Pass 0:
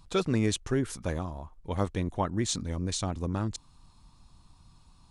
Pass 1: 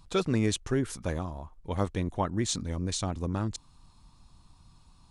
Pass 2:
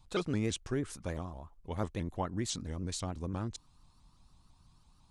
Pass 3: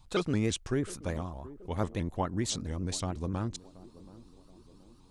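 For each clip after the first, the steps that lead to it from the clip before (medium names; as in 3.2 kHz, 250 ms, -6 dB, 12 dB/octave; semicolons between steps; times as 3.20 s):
no audible change
vibrato with a chosen wave saw up 6 Hz, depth 160 cents; trim -6 dB
band-passed feedback delay 727 ms, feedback 58%, band-pass 330 Hz, level -16.5 dB; trim +3.5 dB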